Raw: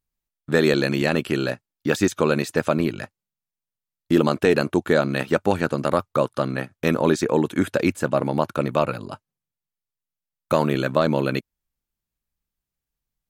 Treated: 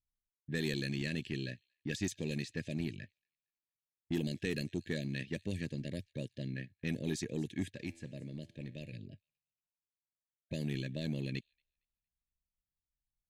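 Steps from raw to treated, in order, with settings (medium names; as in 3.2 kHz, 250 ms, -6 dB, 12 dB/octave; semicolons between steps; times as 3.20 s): on a send: feedback echo behind a high-pass 230 ms, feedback 46%, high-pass 4.8 kHz, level -18 dB; on the sum: level-controlled noise filter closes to 1.1 kHz, open at -14 dBFS; brick-wall FIR band-stop 670–1600 Hz; amplifier tone stack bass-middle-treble 6-0-2; in parallel at -5 dB: hard clipper -36 dBFS, distortion -11 dB; 7.72–8.93 s: on the sum: feedback comb 83 Hz, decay 0.94 s, harmonics all, mix 50%; trim +1 dB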